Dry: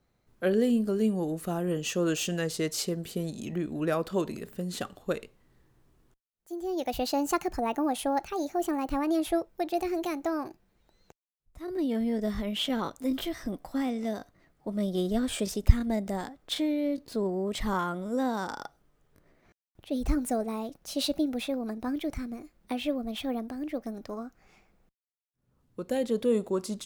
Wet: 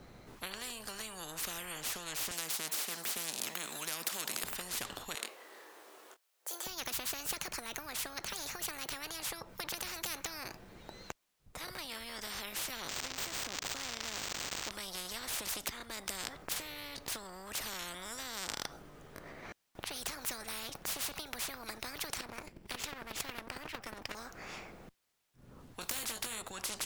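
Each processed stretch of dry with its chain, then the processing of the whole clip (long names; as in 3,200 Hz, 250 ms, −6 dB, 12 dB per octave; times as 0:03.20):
0:02.31–0:04.44: high-pass filter 200 Hz 24 dB per octave + spectral tilt +3 dB per octave
0:05.15–0:06.67: high-pass filter 460 Hz 24 dB per octave + high-shelf EQ 9,300 Hz +5 dB + double-tracking delay 26 ms −9 dB
0:12.88–0:14.71: spike at every zero crossing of −29.5 dBFS + Bessel high-pass filter 160 Hz + linearly interpolated sample-rate reduction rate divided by 4×
0:22.20–0:24.15: lower of the sound and its delayed copy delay 0.39 ms + low-shelf EQ 350 Hz +12 dB + square-wave tremolo 11 Hz, depth 65%, duty 10%
0:25.81–0:26.42: de-essing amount 90% + high-shelf EQ 4,100 Hz +10 dB + double-tracking delay 18 ms −6 dB
whole clip: high-shelf EQ 7,400 Hz −6 dB; downward compressor 12 to 1, threshold −30 dBFS; every bin compressed towards the loudest bin 10 to 1; level +7.5 dB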